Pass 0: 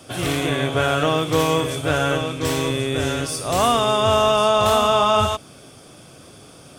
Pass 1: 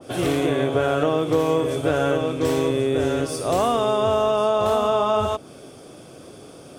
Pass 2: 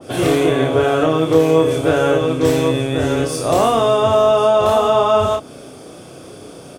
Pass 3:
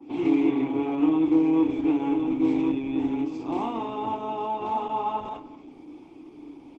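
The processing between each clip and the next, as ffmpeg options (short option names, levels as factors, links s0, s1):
-af "equalizer=f=410:w=0.73:g=9,acompressor=threshold=0.2:ratio=3,adynamicequalizer=threshold=0.0316:dfrequency=1900:dqfactor=0.7:tfrequency=1900:tqfactor=0.7:attack=5:release=100:ratio=0.375:range=2:mode=cutabove:tftype=highshelf,volume=0.708"
-filter_complex "[0:a]asplit=2[s0][s1];[s1]adelay=31,volume=0.631[s2];[s0][s2]amix=inputs=2:normalize=0,volume=1.68"
-filter_complex "[0:a]asplit=3[s0][s1][s2];[s0]bandpass=f=300:t=q:w=8,volume=1[s3];[s1]bandpass=f=870:t=q:w=8,volume=0.501[s4];[s2]bandpass=f=2240:t=q:w=8,volume=0.355[s5];[s3][s4][s5]amix=inputs=3:normalize=0,asplit=2[s6][s7];[s7]adelay=220,highpass=300,lowpass=3400,asoftclip=type=hard:threshold=0.0794,volume=0.141[s8];[s6][s8]amix=inputs=2:normalize=0,volume=1.26" -ar 48000 -c:a libopus -b:a 12k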